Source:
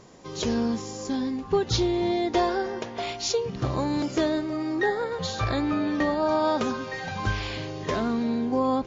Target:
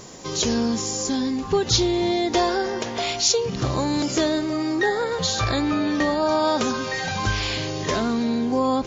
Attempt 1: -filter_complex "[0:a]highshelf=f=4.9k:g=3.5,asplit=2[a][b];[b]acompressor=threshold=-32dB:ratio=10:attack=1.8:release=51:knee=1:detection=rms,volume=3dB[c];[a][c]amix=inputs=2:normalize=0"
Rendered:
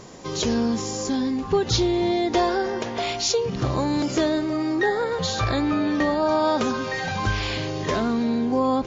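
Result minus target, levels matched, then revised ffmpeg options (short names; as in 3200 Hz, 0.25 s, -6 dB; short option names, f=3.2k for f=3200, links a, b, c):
8000 Hz band -5.0 dB
-filter_complex "[0:a]highshelf=f=4.9k:g=14,asplit=2[a][b];[b]acompressor=threshold=-32dB:ratio=10:attack=1.8:release=51:knee=1:detection=rms,volume=3dB[c];[a][c]amix=inputs=2:normalize=0"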